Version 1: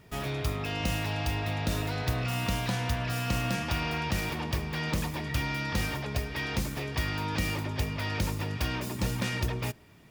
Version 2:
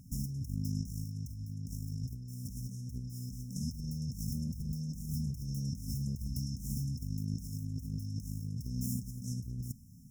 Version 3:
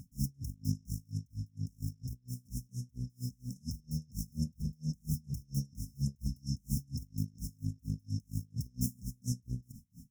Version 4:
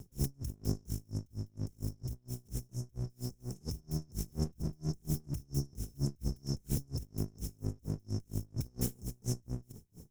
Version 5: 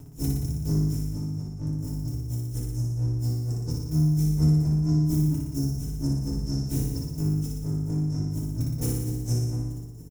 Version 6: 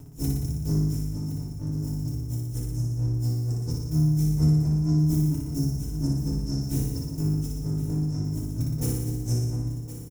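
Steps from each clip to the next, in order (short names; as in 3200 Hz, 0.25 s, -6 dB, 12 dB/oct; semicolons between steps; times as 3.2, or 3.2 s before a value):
FFT band-reject 270–5200 Hz; limiter -24.5 dBFS, peak gain reduction 6.5 dB; negative-ratio compressor -37 dBFS, ratio -0.5
dB-linear tremolo 4.3 Hz, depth 34 dB; gain +6.5 dB
minimum comb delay 1.3 ms; gain +1.5 dB
doubler 25 ms -11.5 dB; on a send: flutter echo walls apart 10.1 m, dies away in 1.1 s; on the sum: FDN reverb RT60 0.36 s, low-frequency decay 1.55×, high-frequency decay 0.55×, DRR -2.5 dB
echo 1.066 s -12.5 dB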